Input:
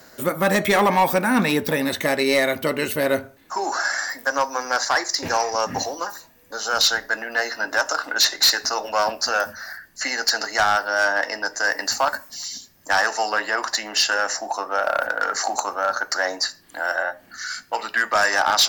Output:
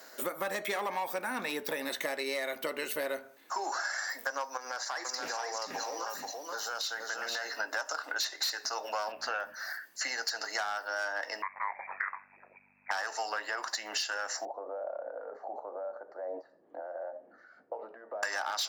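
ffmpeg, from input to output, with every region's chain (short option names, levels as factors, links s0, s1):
-filter_complex "[0:a]asettb=1/sr,asplit=3[s0][s1][s2];[s0]atrim=end=4.574[s3];[s1]atrim=start=4.57:end=7.57,asetpts=PTS-STARTPTS,afade=t=in:d=0.004:c=qsin,afade=t=out:st=2.996:d=0.004:c=qsin,acompressor=threshold=0.0251:ratio=2.5:attack=3.2:release=140:knee=1:detection=peak,aecho=1:1:479:0.668,atrim=end_sample=132300[s4];[s2]atrim=start=7.566[s5];[s3][s4]acrossfade=d=0.004:c1=hsin:c2=qsin[s6];[s6][s5]acrossfade=d=0.004:c1=qsin:c2=hsin,asettb=1/sr,asplit=3[s7][s8][s9];[s7]atrim=end=9.124[s10];[s8]atrim=start=9.12:end=9.54,asetpts=PTS-STARTPTS,afade=t=in:d=0.004:c=qsin,afade=t=out:st=0.416:d=0.004:c=qsin,highshelf=f=3900:t=q:w=1.5:g=-10,aeval=exprs='val(0)+0.01*(sin(2*PI*60*n/s)+sin(2*PI*2*60*n/s)/2+sin(2*PI*3*60*n/s)/3+sin(2*PI*4*60*n/s)/4+sin(2*PI*5*60*n/s)/5)':c=same[s11];[s9]atrim=start=9.536[s12];[s10][s11]acrossfade=d=0.004:c1=hsin:c2=qsin[s13];[s13][s12]acrossfade=d=0.004:c1=qsin:c2=hsin,asettb=1/sr,asplit=3[s14][s15][s16];[s14]atrim=end=11.424[s17];[s15]atrim=start=11.42:end=12.91,asetpts=PTS-STARTPTS,afade=t=in:d=0.004:c=qsin,afade=t=out:st=1.486:d=0.004:c=qsin,lowpass=f=2200:t=q:w=0.5098,lowpass=f=2200:t=q:w=0.6013,lowpass=f=2200:t=q:w=0.9,lowpass=f=2200:t=q:w=2.563,afreqshift=-2600,aeval=exprs='val(0)*sin(2*PI*48*n/s)':c=same,aeval=exprs='val(0)+0.00355*(sin(2*PI*50*n/s)+sin(2*PI*2*50*n/s)/2+sin(2*PI*3*50*n/s)/3+sin(2*PI*4*50*n/s)/4+sin(2*PI*5*50*n/s)/5)':c=same[s18];[s16]atrim=start=12.906[s19];[s17][s18]acrossfade=d=0.004:c1=hsin:c2=qsin[s20];[s20][s19]acrossfade=d=0.004:c1=qsin:c2=hsin,asettb=1/sr,asplit=3[s21][s22][s23];[s21]atrim=end=14.454[s24];[s22]atrim=start=14.45:end=18.23,asetpts=PTS-STARTPTS,afade=t=in:d=0.004:c=qsin,afade=t=out:st=3.776:d=0.004:c=qsin,acompressor=threshold=0.0282:ratio=6:attack=3.2:release=140:knee=1:detection=peak,aeval=exprs='val(0)+0.000631*(sin(2*PI*60*n/s)+sin(2*PI*2*60*n/s)/2+sin(2*PI*3*60*n/s)/3+sin(2*PI*4*60*n/s)/4+sin(2*PI*5*60*n/s)/5)':c=same,lowpass=f=540:t=q:w=2.6[s25];[s23]atrim=start=18.226[s26];[s24][s25]acrossfade=d=0.004:c1=hsin:c2=qsin[s27];[s27][s26]acrossfade=d=0.004:c1=qsin:c2=hsin,highpass=400,acompressor=threshold=0.0398:ratio=6,volume=0.668"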